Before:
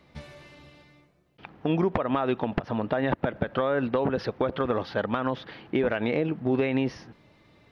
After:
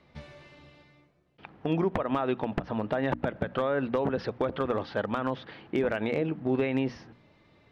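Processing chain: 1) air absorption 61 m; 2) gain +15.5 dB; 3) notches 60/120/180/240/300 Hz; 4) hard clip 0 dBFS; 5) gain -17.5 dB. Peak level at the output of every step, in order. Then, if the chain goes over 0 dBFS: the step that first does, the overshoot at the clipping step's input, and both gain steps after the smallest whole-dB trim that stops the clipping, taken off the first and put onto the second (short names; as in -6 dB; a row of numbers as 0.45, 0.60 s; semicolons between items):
-11.0, +4.5, +5.0, 0.0, -17.5 dBFS; step 2, 5.0 dB; step 2 +10.5 dB, step 5 -12.5 dB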